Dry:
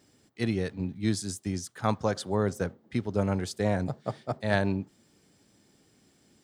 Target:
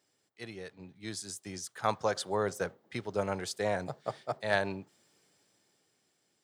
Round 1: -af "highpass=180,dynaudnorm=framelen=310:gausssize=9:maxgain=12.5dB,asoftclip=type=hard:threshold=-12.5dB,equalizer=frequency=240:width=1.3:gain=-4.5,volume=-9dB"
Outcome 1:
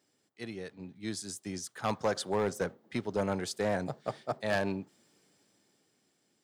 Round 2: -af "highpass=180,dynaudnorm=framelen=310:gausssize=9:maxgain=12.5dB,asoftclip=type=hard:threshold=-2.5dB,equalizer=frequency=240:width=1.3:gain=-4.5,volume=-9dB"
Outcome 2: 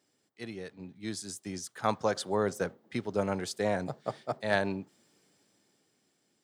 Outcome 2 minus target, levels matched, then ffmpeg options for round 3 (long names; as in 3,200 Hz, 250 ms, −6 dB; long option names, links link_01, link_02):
250 Hz band +4.0 dB
-af "highpass=180,dynaudnorm=framelen=310:gausssize=9:maxgain=12.5dB,asoftclip=type=hard:threshold=-2.5dB,equalizer=frequency=240:width=1.3:gain=-11.5,volume=-9dB"